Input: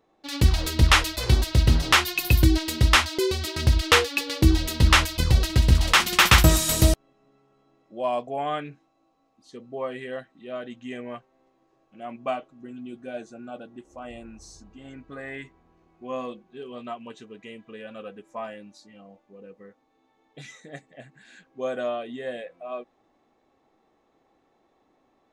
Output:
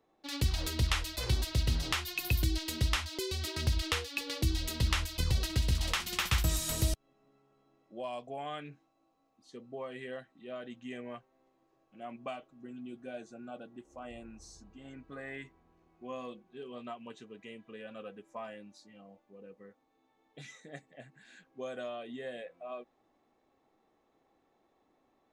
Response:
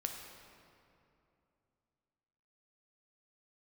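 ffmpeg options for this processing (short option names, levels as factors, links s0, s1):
-filter_complex "[0:a]acrossover=split=120|2300[s0][s1][s2];[s0]acompressor=threshold=0.0891:ratio=4[s3];[s1]acompressor=threshold=0.0251:ratio=4[s4];[s2]acompressor=threshold=0.0398:ratio=4[s5];[s3][s4][s5]amix=inputs=3:normalize=0,volume=0.501"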